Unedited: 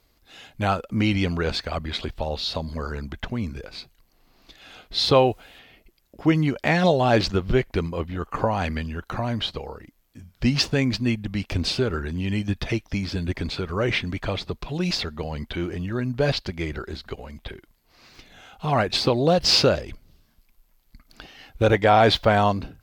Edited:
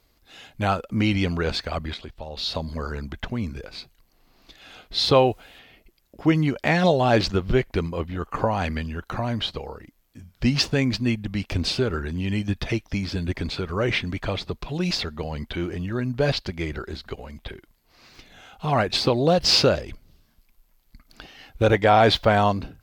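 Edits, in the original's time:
0:01.94–0:02.37: clip gain −8.5 dB

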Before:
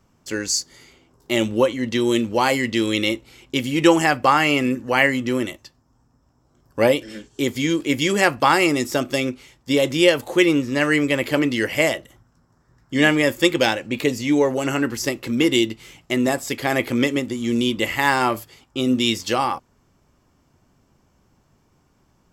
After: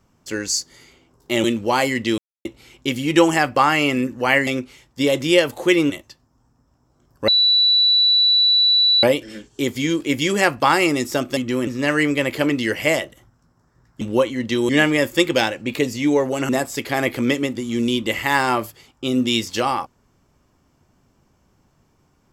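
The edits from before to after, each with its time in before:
0:01.44–0:02.12: move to 0:12.94
0:02.86–0:03.13: silence
0:05.15–0:05.45: swap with 0:09.17–0:10.60
0:06.83: insert tone 3,950 Hz −12 dBFS 1.75 s
0:14.74–0:16.22: remove

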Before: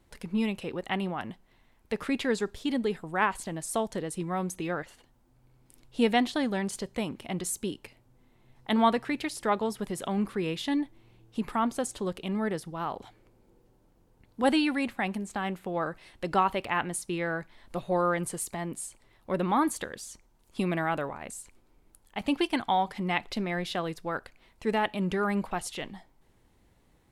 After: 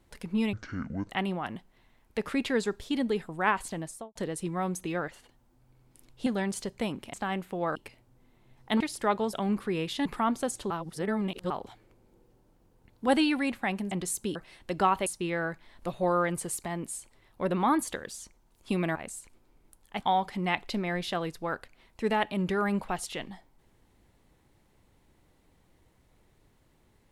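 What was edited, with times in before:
0:00.53–0:00.84: play speed 55%
0:03.52–0:03.90: fade out and dull
0:06.01–0:06.43: remove
0:07.30–0:07.74: swap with 0:15.27–0:15.89
0:08.79–0:09.22: remove
0:09.75–0:10.02: remove
0:10.74–0:11.41: remove
0:12.06–0:12.86: reverse
0:16.60–0:16.95: remove
0:20.84–0:21.17: remove
0:22.23–0:22.64: remove

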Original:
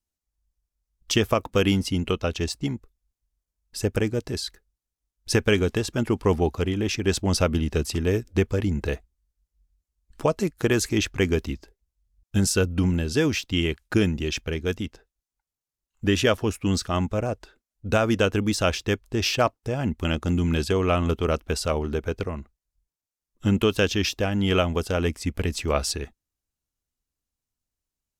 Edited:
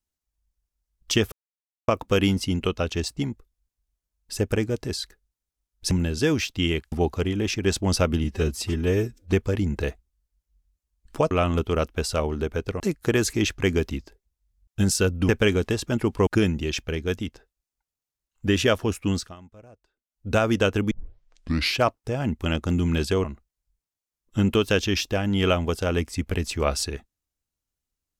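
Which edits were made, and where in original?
0:01.32: splice in silence 0.56 s
0:05.35–0:06.33: swap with 0:12.85–0:13.86
0:07.65–0:08.37: time-stretch 1.5×
0:16.67–0:17.86: duck −22.5 dB, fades 0.28 s
0:18.50: tape start 0.89 s
0:20.83–0:22.32: move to 0:10.36

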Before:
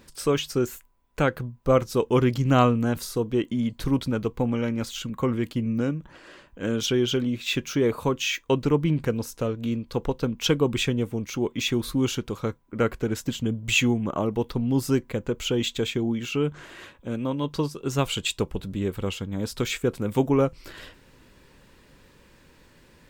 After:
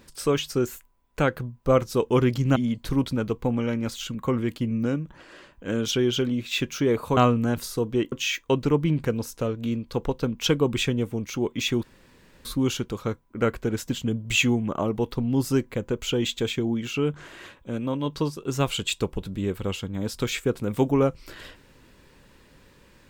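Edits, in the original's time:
0:02.56–0:03.51: move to 0:08.12
0:11.83: splice in room tone 0.62 s

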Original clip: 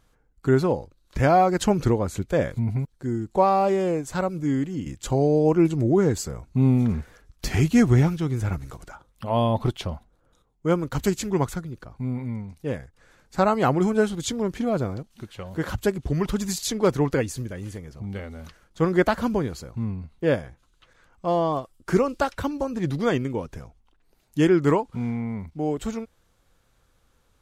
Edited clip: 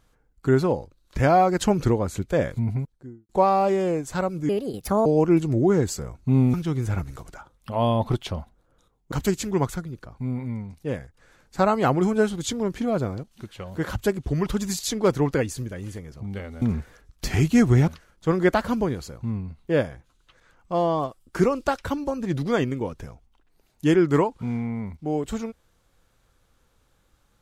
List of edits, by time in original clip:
0:02.65–0:03.29: fade out and dull
0:04.49–0:05.34: play speed 150%
0:06.82–0:08.08: move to 0:18.41
0:10.66–0:10.91: remove

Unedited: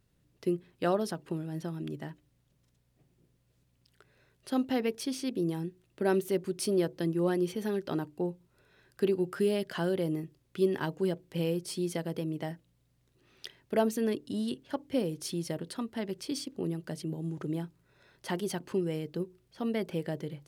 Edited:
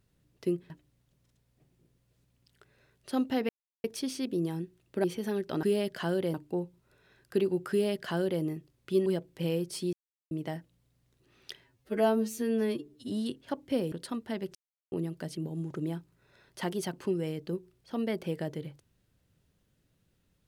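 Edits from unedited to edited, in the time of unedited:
0:00.70–0:02.09: remove
0:04.88: splice in silence 0.35 s
0:06.08–0:07.42: remove
0:09.38–0:10.09: duplicate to 0:08.01
0:10.73–0:11.01: remove
0:11.88–0:12.26: silence
0:13.59–0:14.32: time-stretch 2×
0:15.14–0:15.59: remove
0:16.22–0:16.59: silence

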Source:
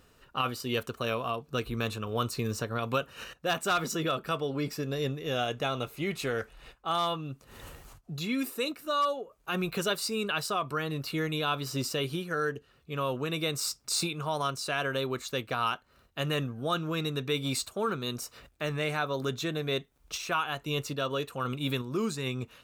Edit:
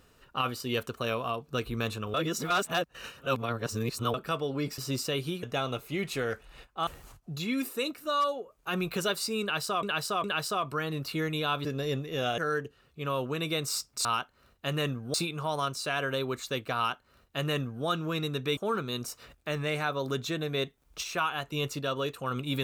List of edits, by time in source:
0:02.14–0:04.14: reverse
0:04.78–0:05.51: swap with 0:11.64–0:12.29
0:06.95–0:07.68: remove
0:10.23–0:10.64: repeat, 3 plays
0:15.58–0:16.67: duplicate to 0:13.96
0:17.39–0:17.71: remove

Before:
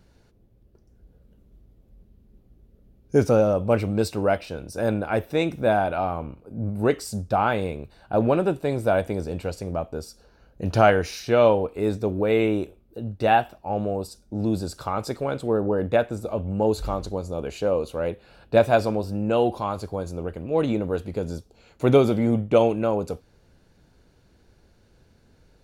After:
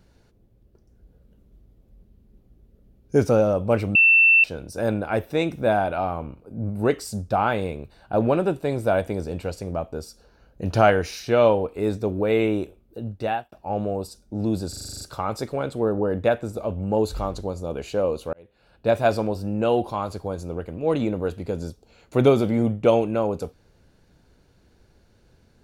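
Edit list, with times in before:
0:03.95–0:04.44: beep over 2,680 Hz −11.5 dBFS
0:13.07–0:13.52: fade out
0:14.69: stutter 0.04 s, 9 plays
0:18.01–0:18.82: fade in

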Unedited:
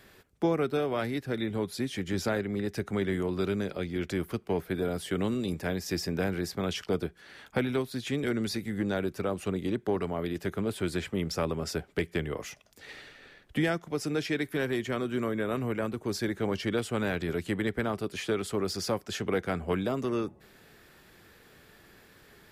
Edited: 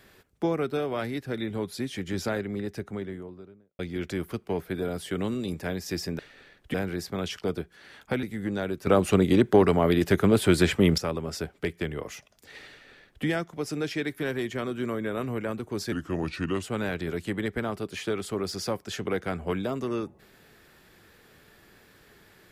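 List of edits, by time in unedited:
0:02.36–0:03.79: fade out and dull
0:07.68–0:08.57: remove
0:09.21–0:11.32: clip gain +10.5 dB
0:13.04–0:13.59: duplicate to 0:06.19
0:16.26–0:16.84: play speed 82%

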